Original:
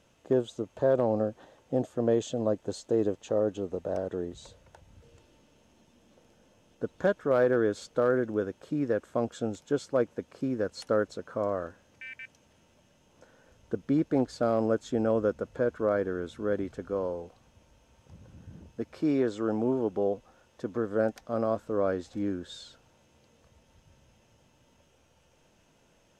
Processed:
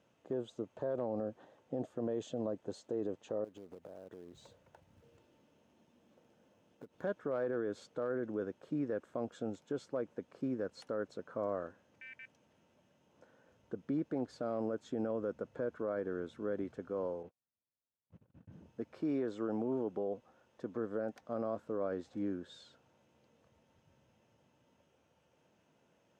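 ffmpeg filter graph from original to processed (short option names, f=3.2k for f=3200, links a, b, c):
-filter_complex "[0:a]asettb=1/sr,asplit=3[a][b][c];[a]atrim=end=3.444[d];[b]atrim=start=3.44:end=7.03,asetpts=PTS-STARTPTS,afade=t=in:d=0.004:c=qsin,afade=t=out:st=3.586:d=0.004:c=qsin,acompressor=threshold=-41dB:ratio=8:attack=3.2:release=140:knee=1:detection=peak,acrusher=bits=4:mode=log:mix=0:aa=0.000001[e];[c]atrim=start=7.026[f];[d][e]acrossfade=d=0.004:c1=hsin:c2=qsin[g];[g][f]acrossfade=d=0.004:c1=qsin:c2=hsin,asettb=1/sr,asplit=3[h][i][j];[h]atrim=end=17.234[k];[i]atrim=start=17.23:end=18.52,asetpts=PTS-STARTPTS,afade=t=in:d=0.004:c=qsin,afade=t=out:st=1.286:d=0.004:c=qsin,aeval=exprs='val(0)+0.5*0.00119*sgn(val(0))':c=same,bass=f=250:g=1,treble=f=4k:g=-12,agate=range=-40dB:threshold=-48dB:ratio=16:release=100:detection=peak[l];[j]atrim=start=18.516[m];[k][l]acrossfade=d=0.004:c1=hsin:c2=qsin[n];[n][m]acrossfade=d=0.004:c1=qsin:c2=hsin,highpass=120,highshelf=f=3.4k:g=-10,alimiter=limit=-22dB:level=0:latency=1:release=41,volume=-5.5dB"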